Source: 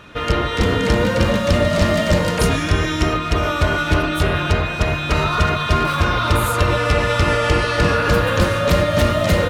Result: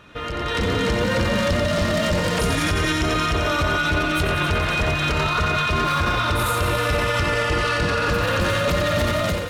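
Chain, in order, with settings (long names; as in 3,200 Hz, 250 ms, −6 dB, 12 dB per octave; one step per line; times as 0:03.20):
delay with a high-pass on its return 89 ms, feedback 81%, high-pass 1,400 Hz, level −6 dB
brickwall limiter −15.5 dBFS, peak gain reduction 11 dB
automatic gain control gain up to 9 dB
level −6 dB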